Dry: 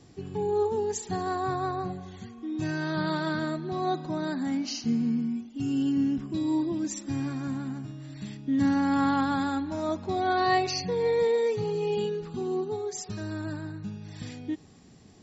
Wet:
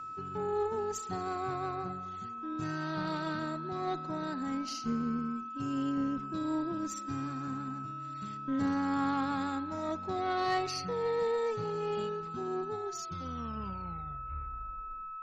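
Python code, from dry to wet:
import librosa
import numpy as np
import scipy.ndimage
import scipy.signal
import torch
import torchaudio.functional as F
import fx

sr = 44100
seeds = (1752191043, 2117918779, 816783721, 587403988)

y = fx.tape_stop_end(x, sr, length_s=2.41)
y = y + 10.0 ** (-33.0 / 20.0) * np.sin(2.0 * np.pi * 1300.0 * np.arange(len(y)) / sr)
y = fx.tube_stage(y, sr, drive_db=18.0, bias=0.5)
y = y * 10.0 ** (-4.5 / 20.0)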